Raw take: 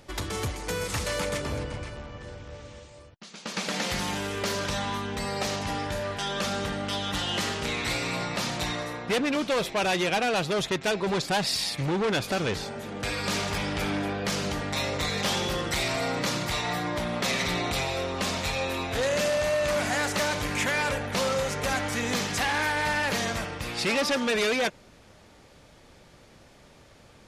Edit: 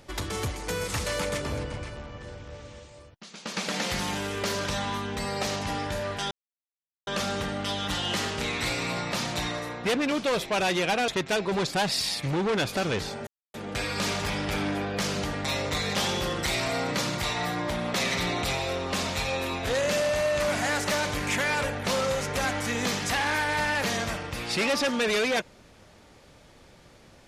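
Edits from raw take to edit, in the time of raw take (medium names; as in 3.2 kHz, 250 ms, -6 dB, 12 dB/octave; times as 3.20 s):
6.31 s: insert silence 0.76 s
10.32–10.63 s: delete
12.82 s: insert silence 0.27 s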